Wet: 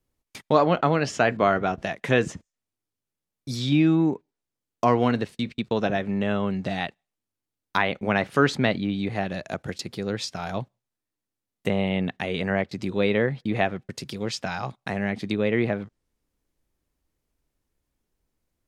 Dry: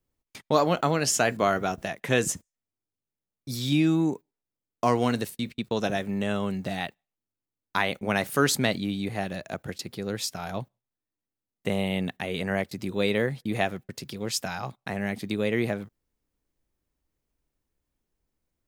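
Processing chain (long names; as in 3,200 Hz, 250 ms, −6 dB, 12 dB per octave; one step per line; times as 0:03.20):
treble cut that deepens with the level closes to 3,000 Hz, closed at −24 dBFS
level +3 dB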